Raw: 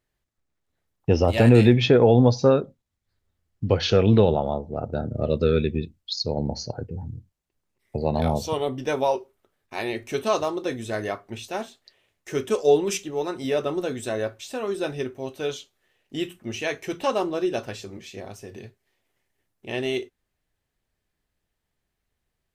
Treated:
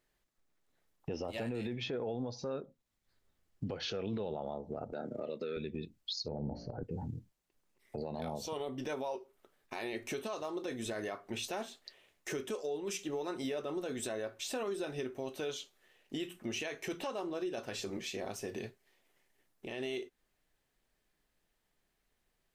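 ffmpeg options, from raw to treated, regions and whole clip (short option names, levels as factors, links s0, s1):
-filter_complex "[0:a]asettb=1/sr,asplit=3[s0][s1][s2];[s0]atrim=end=4.924[s3];[s1]atrim=start=4.92:end=5.57,asetpts=PTS-STARTPTS,afade=t=in:d=0.004:c=qsin,afade=t=out:st=0.646:d=0.004:c=qsin,highpass=240,equalizer=f=2100:w=3.5:g=9[s4];[s2]atrim=start=5.566[s5];[s3][s4]acrossfade=d=0.004:c1=hsin:c2=qsin[s6];[s6][s5]acrossfade=d=0.004:c1=qsin:c2=hsin,asettb=1/sr,asplit=3[s7][s8][s9];[s7]atrim=end=6.284[s10];[s8]atrim=start=6.28:end=6.83,asetpts=PTS-STARTPTS,afade=t=in:d=0.004:c=qsin,afade=t=out:st=0.546:d=0.004:c=qsin,lowpass=1800,lowshelf=f=180:g=10,bandreject=f=57.84:t=h:w=4,bandreject=f=115.68:t=h:w=4,bandreject=f=173.52:t=h:w=4,bandreject=f=231.36:t=h:w=4,bandreject=f=289.2:t=h:w=4,bandreject=f=347.04:t=h:w=4,bandreject=f=404.88:t=h:w=4,bandreject=f=462.72:t=h:w=4,bandreject=f=520.56:t=h:w=4,bandreject=f=578.4:t=h:w=4,bandreject=f=636.24:t=h:w=4,bandreject=f=694.08:t=h:w=4[s11];[s9]atrim=start=6.826[s12];[s10][s11]acrossfade=d=0.004:c1=hsin:c2=qsin[s13];[s13][s12]acrossfade=d=0.004:c1=qsin:c2=hsin,equalizer=f=81:w=1:g=-11.5,acompressor=threshold=0.02:ratio=8,alimiter=level_in=2.11:limit=0.0631:level=0:latency=1:release=27,volume=0.473,volume=1.19"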